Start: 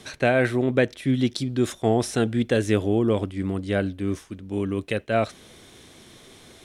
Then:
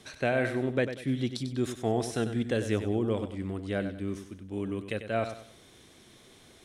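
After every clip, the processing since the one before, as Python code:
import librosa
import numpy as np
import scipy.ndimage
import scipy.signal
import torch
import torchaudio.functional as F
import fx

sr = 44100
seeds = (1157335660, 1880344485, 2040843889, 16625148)

y = fx.echo_feedback(x, sr, ms=96, feedback_pct=33, wet_db=-10.0)
y = F.gain(torch.from_numpy(y), -7.5).numpy()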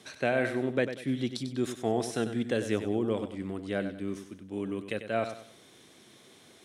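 y = scipy.signal.sosfilt(scipy.signal.butter(2, 140.0, 'highpass', fs=sr, output='sos'), x)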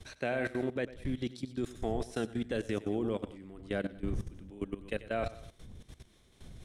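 y = fx.dmg_wind(x, sr, seeds[0], corner_hz=100.0, level_db=-39.0)
y = y + 10.0 ** (-17.0 / 20.0) * np.pad(y, (int(112 * sr / 1000.0), 0))[:len(y)]
y = fx.level_steps(y, sr, step_db=16)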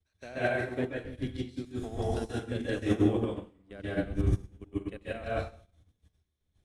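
y = fx.peak_eq(x, sr, hz=79.0, db=10.0, octaves=0.39)
y = fx.rev_plate(y, sr, seeds[1], rt60_s=0.73, hf_ratio=0.9, predelay_ms=120, drr_db=-6.0)
y = fx.upward_expand(y, sr, threshold_db=-45.0, expansion=2.5)
y = F.gain(torch.from_numpy(y), 2.0).numpy()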